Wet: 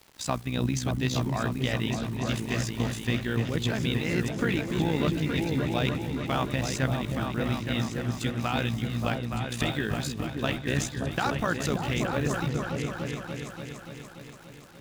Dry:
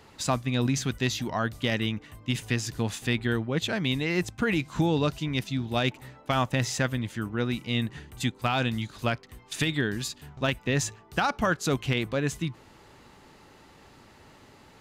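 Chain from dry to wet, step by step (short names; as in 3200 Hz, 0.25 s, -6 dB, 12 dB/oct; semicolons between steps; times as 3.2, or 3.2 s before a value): bit-crush 8-bit; AM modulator 61 Hz, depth 55%; repeats that get brighter 0.29 s, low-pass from 200 Hz, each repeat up 2 oct, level 0 dB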